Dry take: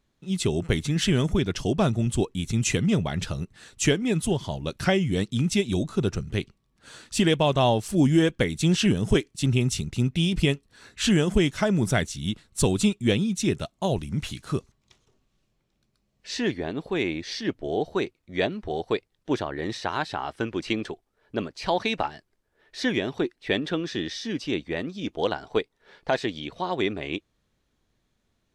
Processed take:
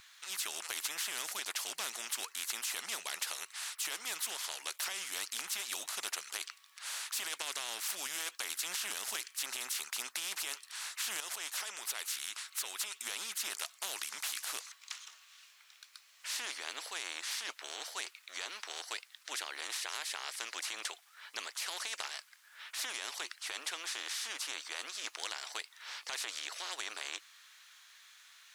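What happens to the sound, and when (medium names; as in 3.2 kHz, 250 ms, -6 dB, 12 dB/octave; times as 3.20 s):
11.20–12.98 s: compression, threshold -30 dBFS
whole clip: high-pass 1.3 kHz 24 dB/octave; peak limiter -23.5 dBFS; spectrum-flattening compressor 4:1; trim +5 dB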